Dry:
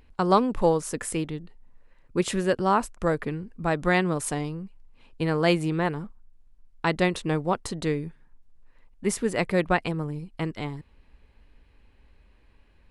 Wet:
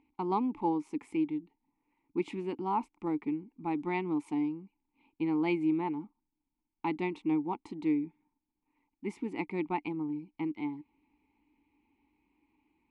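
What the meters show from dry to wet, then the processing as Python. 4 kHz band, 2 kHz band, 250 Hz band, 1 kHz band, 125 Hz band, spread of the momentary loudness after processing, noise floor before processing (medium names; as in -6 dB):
-17.5 dB, -13.5 dB, -3.0 dB, -8.0 dB, -14.5 dB, 8 LU, -58 dBFS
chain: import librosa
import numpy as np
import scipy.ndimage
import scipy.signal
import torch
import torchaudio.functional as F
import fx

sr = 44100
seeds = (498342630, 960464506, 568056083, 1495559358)

y = fx.vowel_filter(x, sr, vowel='u')
y = y * 10.0 ** (4.0 / 20.0)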